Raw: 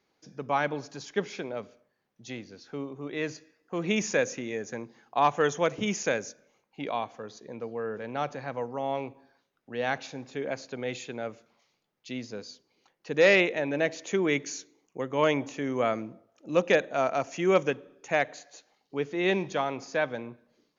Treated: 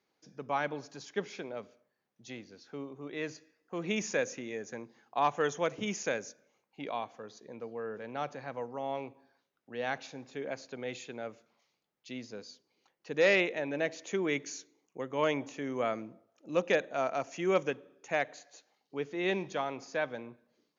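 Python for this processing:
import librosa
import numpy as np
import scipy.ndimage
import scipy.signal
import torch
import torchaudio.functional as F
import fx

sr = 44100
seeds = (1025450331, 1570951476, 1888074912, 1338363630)

y = fx.low_shelf(x, sr, hz=71.0, db=-10.5)
y = y * librosa.db_to_amplitude(-5.0)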